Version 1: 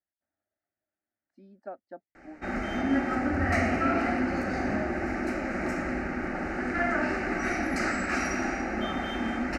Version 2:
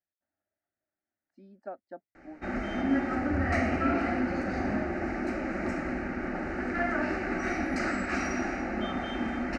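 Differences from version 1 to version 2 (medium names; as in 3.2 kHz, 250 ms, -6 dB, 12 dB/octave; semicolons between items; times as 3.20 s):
background: add distance through air 53 m; reverb: off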